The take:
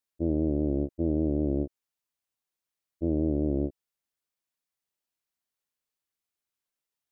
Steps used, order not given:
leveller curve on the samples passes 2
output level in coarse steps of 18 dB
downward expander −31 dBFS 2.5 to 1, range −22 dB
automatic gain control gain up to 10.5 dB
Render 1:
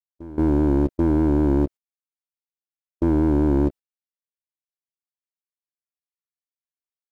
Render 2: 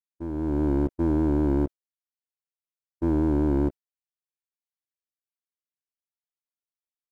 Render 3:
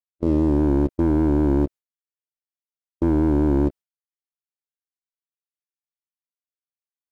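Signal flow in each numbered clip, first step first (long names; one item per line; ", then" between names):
leveller curve on the samples, then downward expander, then automatic gain control, then output level in coarse steps
output level in coarse steps, then leveller curve on the samples, then downward expander, then automatic gain control
automatic gain control, then leveller curve on the samples, then output level in coarse steps, then downward expander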